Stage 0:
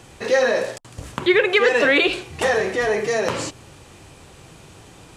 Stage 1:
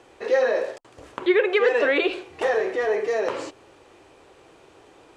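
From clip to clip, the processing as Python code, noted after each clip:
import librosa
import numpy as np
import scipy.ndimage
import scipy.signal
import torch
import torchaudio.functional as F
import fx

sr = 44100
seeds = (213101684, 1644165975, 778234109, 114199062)

y = fx.lowpass(x, sr, hz=2200.0, slope=6)
y = fx.low_shelf_res(y, sr, hz=250.0, db=-12.0, q=1.5)
y = y * librosa.db_to_amplitude(-4.0)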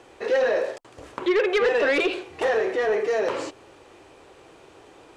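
y = 10.0 ** (-17.5 / 20.0) * np.tanh(x / 10.0 ** (-17.5 / 20.0))
y = y * librosa.db_to_amplitude(2.0)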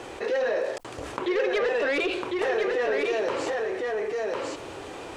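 y = x + 10.0 ** (-5.0 / 20.0) * np.pad(x, (int(1052 * sr / 1000.0), 0))[:len(x)]
y = fx.env_flatten(y, sr, amount_pct=50)
y = y * librosa.db_to_amplitude(-6.5)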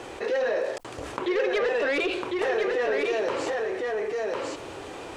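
y = x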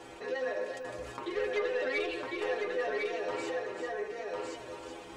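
y = fx.stiff_resonator(x, sr, f0_hz=61.0, decay_s=0.36, stiffness=0.008)
y = y + 10.0 ** (-8.0 / 20.0) * np.pad(y, (int(380 * sr / 1000.0), 0))[:len(y)]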